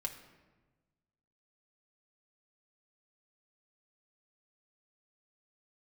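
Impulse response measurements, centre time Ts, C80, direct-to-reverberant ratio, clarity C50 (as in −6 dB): 16 ms, 11.5 dB, 1.0 dB, 10.0 dB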